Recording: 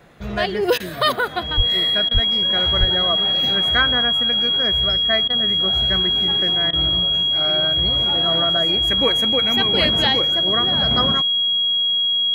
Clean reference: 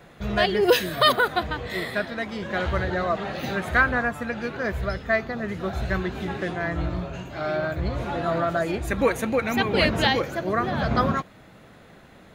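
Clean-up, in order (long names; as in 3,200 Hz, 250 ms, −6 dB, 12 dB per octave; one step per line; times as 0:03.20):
notch filter 3,300 Hz, Q 30
high-pass at the plosives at 0:01.56/0:02.13/0:02.79
repair the gap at 0:00.78/0:02.09/0:05.28/0:06.71, 19 ms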